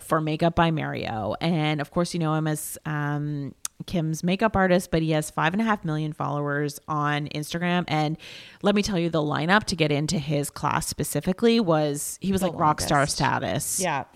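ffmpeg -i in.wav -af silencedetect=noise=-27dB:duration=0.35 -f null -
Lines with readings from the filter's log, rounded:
silence_start: 8.14
silence_end: 8.64 | silence_duration: 0.50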